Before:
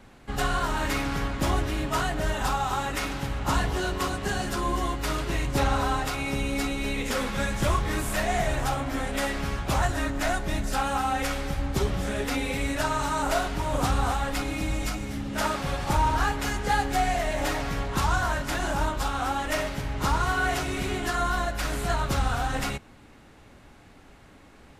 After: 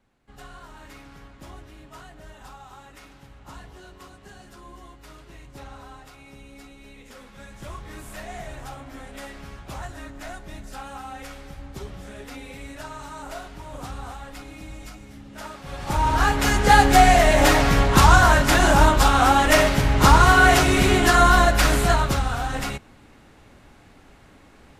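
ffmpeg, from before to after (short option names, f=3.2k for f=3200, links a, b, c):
-af "volume=11.5dB,afade=t=in:st=7.3:d=0.79:silence=0.446684,afade=t=in:st=15.63:d=0.36:silence=0.266073,afade=t=in:st=15.99:d=0.85:silence=0.298538,afade=t=out:st=21.6:d=0.63:silence=0.298538"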